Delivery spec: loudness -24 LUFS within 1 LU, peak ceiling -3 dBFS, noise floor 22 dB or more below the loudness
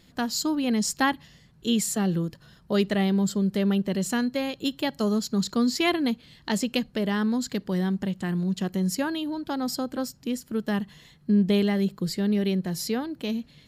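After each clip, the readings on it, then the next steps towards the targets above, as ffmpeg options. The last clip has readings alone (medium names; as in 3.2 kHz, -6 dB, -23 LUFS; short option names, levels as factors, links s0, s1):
loudness -26.5 LUFS; peak level -9.5 dBFS; loudness target -24.0 LUFS
-> -af "volume=1.33"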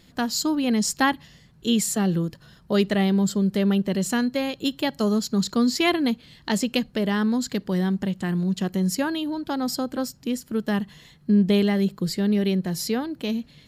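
loudness -24.0 LUFS; peak level -7.5 dBFS; noise floor -54 dBFS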